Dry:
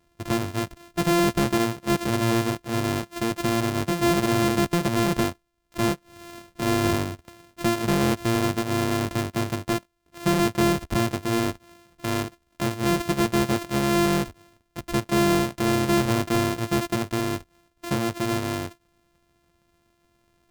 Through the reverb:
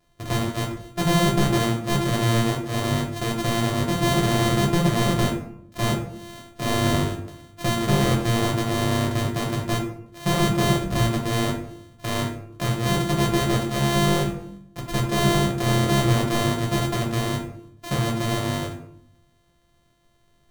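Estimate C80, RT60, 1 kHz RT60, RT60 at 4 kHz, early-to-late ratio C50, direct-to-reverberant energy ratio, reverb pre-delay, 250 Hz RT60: 9.0 dB, 0.70 s, 0.65 s, 0.40 s, 6.0 dB, -1.5 dB, 5 ms, 0.95 s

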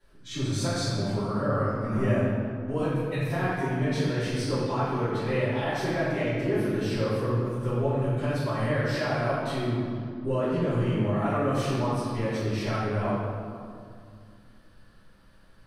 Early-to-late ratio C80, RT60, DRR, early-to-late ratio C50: -0.5 dB, 2.2 s, -18.0 dB, -3.0 dB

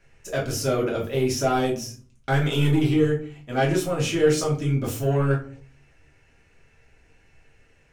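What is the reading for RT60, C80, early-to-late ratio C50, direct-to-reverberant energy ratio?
0.40 s, 15.0 dB, 9.0 dB, -4.0 dB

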